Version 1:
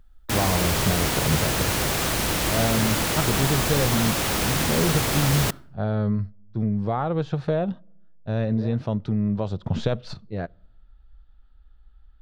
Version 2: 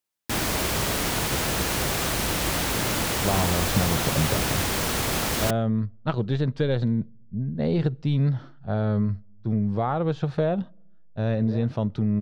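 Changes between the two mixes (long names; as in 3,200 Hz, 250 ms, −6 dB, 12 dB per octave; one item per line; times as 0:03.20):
speech: entry +2.90 s
background: send −9.0 dB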